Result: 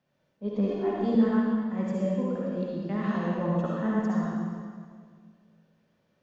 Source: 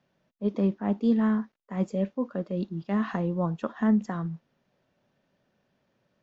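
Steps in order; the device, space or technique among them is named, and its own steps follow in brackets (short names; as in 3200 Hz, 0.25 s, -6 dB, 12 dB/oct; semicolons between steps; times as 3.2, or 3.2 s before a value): stairwell (reverb RT60 1.9 s, pre-delay 51 ms, DRR -5 dB); 0.68–1.15 comb 2.8 ms, depth 77%; gain -5.5 dB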